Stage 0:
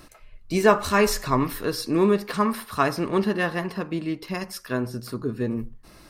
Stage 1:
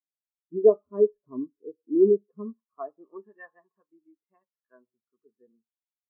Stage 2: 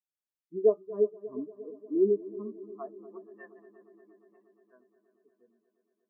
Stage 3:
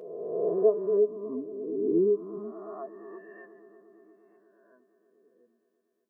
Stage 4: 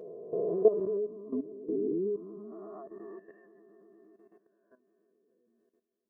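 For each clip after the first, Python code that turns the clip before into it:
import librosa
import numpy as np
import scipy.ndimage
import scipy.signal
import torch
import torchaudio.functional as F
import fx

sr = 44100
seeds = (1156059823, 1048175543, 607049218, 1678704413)

y1 = fx.filter_sweep_bandpass(x, sr, from_hz=380.0, to_hz=1100.0, start_s=2.43, end_s=3.28, q=0.84)
y1 = fx.spectral_expand(y1, sr, expansion=2.5)
y2 = fx.echo_heads(y1, sr, ms=118, heads='second and third', feedback_pct=68, wet_db=-19)
y2 = y2 * librosa.db_to_amplitude(-5.5)
y3 = fx.spec_swells(y2, sr, rise_s=1.54)
y3 = fx.doubler(y3, sr, ms=12.0, db=-12.5)
y3 = y3 * librosa.db_to_amplitude(-1.5)
y4 = fx.low_shelf(y3, sr, hz=410.0, db=9.5)
y4 = fx.level_steps(y4, sr, step_db=14)
y4 = y4 * librosa.db_to_amplitude(-2.5)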